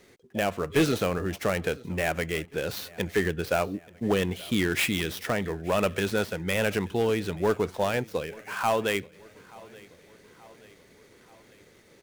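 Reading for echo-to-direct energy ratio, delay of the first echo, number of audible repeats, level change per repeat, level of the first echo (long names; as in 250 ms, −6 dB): −21.5 dB, 880 ms, 3, −5.0 dB, −23.0 dB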